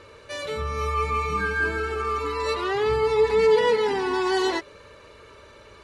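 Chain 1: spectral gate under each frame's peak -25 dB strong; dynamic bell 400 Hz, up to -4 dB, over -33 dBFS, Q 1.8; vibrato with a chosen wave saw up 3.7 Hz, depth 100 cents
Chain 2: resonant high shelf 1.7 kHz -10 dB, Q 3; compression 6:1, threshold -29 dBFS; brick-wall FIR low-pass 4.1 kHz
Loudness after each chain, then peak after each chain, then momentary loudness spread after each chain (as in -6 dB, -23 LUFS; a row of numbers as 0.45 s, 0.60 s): -26.0 LUFS, -31.5 LUFS; -12.5 dBFS, -21.5 dBFS; 8 LU, 16 LU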